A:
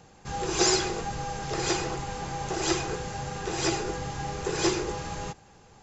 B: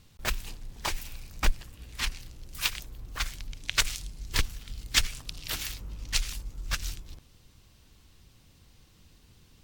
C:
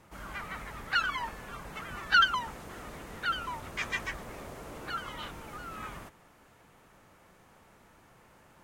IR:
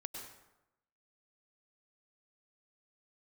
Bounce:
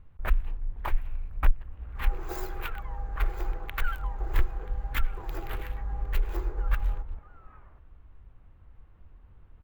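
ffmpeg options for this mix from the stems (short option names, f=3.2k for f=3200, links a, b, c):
-filter_complex "[0:a]highshelf=f=5.5k:g=-10.5,aexciter=amount=6.7:drive=2.3:freq=4.1k,adelay=1700,volume=-10dB[a];[1:a]lowshelf=f=100:g=11,volume=0.5dB[b];[2:a]adelay=1700,volume=-13dB[c];[a][b]amix=inputs=2:normalize=0,alimiter=limit=-9.5dB:level=0:latency=1:release=240,volume=0dB[d];[c][d]amix=inputs=2:normalize=0,equalizer=f=180:t=o:w=2.1:g=-8,adynamicsmooth=sensitivity=4:basefreq=3.2k,firequalizer=gain_entry='entry(1300,0);entry(5200,-27);entry(14000,6)':delay=0.05:min_phase=1"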